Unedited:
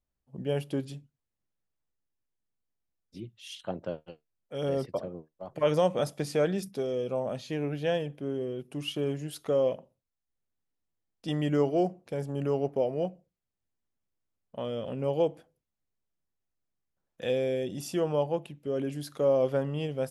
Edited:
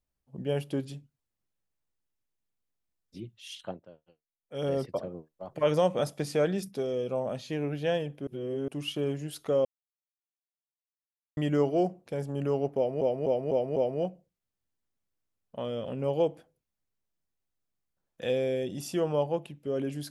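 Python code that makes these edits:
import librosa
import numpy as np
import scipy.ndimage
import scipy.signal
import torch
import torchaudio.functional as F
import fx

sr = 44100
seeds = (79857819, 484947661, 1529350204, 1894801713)

y = fx.edit(x, sr, fx.fade_down_up(start_s=3.64, length_s=0.95, db=-17.0, fade_s=0.17),
    fx.reverse_span(start_s=8.27, length_s=0.41),
    fx.silence(start_s=9.65, length_s=1.72),
    fx.repeat(start_s=12.76, length_s=0.25, count=5), tone=tone)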